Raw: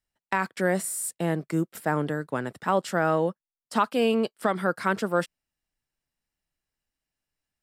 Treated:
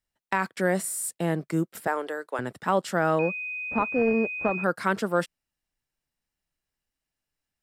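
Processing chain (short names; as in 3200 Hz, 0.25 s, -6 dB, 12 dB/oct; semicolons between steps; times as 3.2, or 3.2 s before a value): 1.87–2.39 HPF 390 Hz 24 dB/oct; 3.19–4.64 pulse-width modulation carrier 2500 Hz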